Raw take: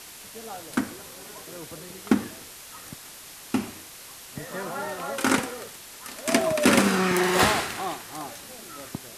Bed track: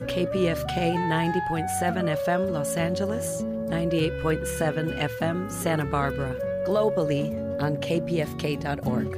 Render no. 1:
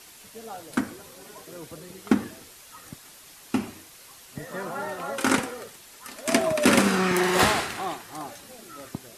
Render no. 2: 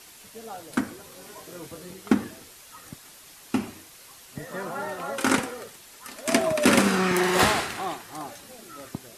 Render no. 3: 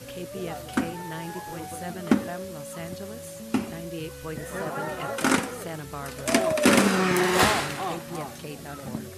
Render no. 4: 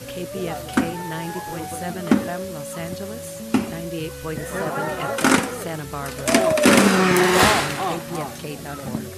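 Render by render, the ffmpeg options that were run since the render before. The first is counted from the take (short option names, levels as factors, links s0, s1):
-af "afftdn=nr=6:nf=-44"
-filter_complex "[0:a]asettb=1/sr,asplit=3[s0][s1][s2];[s0]atrim=end=1.094[s3];[s1]atrim=start=1.09:end=1.94,asetpts=PTS-STARTPTS,afade=t=in:d=0.004:c=qsin,afade=t=out:st=0.846:d=0.004:c=qsin,asplit=2[s4][s5];[s5]adelay=22,volume=0.562[s6];[s4][s6]amix=inputs=2:normalize=0,atrim=end_sample=37485[s7];[s2]atrim=start=1.936[s8];[s3][s7]acrossfade=d=0.004:c1=hsin:c2=qsin[s9];[s9][s8]acrossfade=d=0.004:c1=qsin:c2=hsin"
-filter_complex "[1:a]volume=0.282[s0];[0:a][s0]amix=inputs=2:normalize=0"
-af "volume=2,alimiter=limit=0.794:level=0:latency=1"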